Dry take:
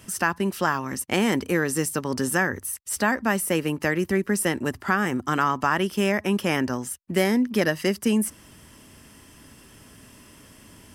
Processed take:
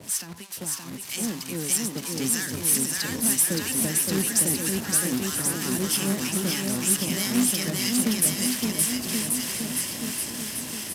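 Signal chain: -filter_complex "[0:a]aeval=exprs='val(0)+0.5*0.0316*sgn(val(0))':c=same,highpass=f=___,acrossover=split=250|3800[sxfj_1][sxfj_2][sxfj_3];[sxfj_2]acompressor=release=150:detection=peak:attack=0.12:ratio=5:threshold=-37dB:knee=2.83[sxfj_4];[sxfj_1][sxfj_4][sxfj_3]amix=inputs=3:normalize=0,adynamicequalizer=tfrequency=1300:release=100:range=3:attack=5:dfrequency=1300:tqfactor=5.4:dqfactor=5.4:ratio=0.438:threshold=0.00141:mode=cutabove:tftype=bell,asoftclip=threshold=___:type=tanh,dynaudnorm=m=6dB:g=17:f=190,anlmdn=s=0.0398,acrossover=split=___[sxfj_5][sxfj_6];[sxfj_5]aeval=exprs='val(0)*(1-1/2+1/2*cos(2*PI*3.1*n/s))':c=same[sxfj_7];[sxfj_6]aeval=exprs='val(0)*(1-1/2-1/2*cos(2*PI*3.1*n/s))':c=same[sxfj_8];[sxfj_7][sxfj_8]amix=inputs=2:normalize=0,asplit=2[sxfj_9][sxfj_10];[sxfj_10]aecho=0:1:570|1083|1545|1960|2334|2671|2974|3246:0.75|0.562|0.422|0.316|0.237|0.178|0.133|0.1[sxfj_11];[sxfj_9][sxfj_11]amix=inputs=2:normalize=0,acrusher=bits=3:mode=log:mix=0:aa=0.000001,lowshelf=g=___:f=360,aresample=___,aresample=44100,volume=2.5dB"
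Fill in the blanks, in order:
110, -16.5dB, 960, -9, 32000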